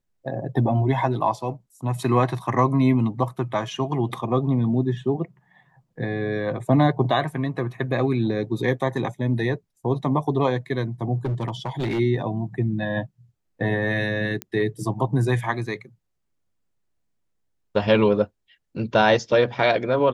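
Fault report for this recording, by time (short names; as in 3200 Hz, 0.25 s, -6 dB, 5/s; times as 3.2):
11.25–12 clipped -21.5 dBFS
14.42 pop -13 dBFS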